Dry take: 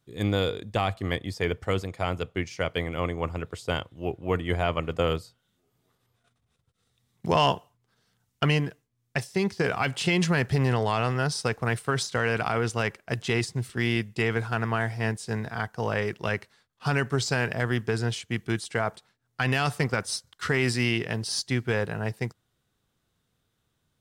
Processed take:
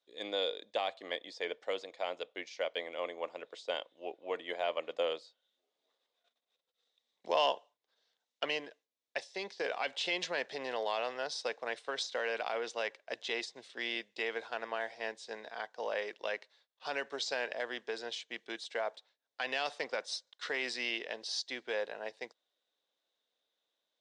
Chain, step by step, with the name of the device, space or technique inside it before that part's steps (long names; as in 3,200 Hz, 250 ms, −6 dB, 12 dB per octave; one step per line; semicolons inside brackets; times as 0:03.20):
phone speaker on a table (loudspeaker in its box 360–6,600 Hz, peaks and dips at 380 Hz −6 dB, 570 Hz +6 dB, 1,300 Hz −7 dB, 3,700 Hz +8 dB)
level −8 dB